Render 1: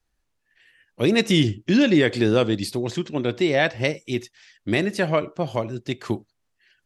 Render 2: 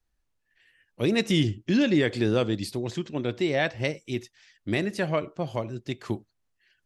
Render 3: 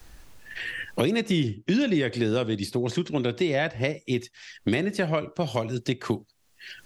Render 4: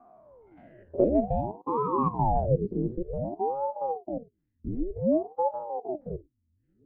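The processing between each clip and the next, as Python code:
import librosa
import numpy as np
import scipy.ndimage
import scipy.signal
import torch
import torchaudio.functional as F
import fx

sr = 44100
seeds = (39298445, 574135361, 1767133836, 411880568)

y1 = fx.low_shelf(x, sr, hz=120.0, db=4.5)
y1 = F.gain(torch.from_numpy(y1), -5.5).numpy()
y2 = fx.band_squash(y1, sr, depth_pct=100)
y3 = fx.spec_steps(y2, sr, hold_ms=50)
y3 = fx.filter_sweep_lowpass(y3, sr, from_hz=470.0, to_hz=160.0, start_s=2.06, end_s=3.57, q=6.3)
y3 = fx.ring_lfo(y3, sr, carrier_hz=400.0, swing_pct=80, hz=0.54)
y3 = F.gain(torch.from_numpy(y3), -4.5).numpy()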